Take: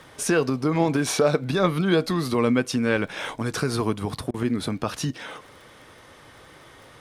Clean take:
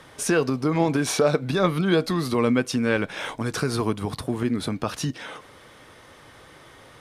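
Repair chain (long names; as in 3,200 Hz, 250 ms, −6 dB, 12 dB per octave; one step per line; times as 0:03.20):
click removal
repair the gap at 0:04.31, 29 ms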